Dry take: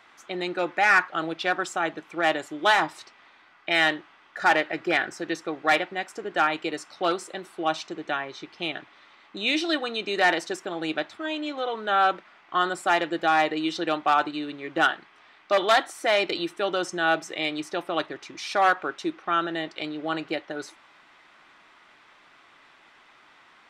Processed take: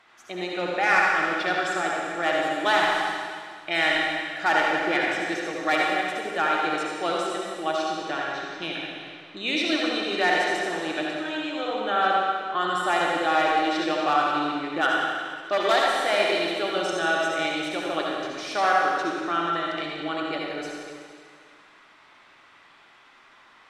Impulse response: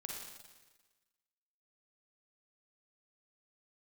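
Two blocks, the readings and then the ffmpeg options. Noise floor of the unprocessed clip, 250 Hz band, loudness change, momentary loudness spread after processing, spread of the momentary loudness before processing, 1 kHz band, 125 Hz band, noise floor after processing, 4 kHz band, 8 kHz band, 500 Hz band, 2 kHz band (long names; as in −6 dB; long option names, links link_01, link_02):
−56 dBFS, +1.0 dB, +1.0 dB, 10 LU, 11 LU, +1.5 dB, +0.5 dB, −54 dBFS, +1.5 dB, +1.5 dB, +1.5 dB, +1.0 dB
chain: -filter_complex "[1:a]atrim=start_sample=2205,asetrate=28665,aresample=44100[link_01];[0:a][link_01]afir=irnorm=-1:irlink=0"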